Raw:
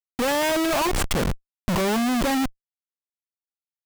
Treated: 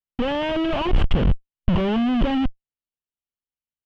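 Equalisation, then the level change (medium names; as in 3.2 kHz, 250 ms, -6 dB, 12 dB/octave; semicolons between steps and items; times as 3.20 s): tape spacing loss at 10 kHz 39 dB; bass shelf 170 Hz +10.5 dB; peaking EQ 3 kHz +14 dB 0.43 oct; 0.0 dB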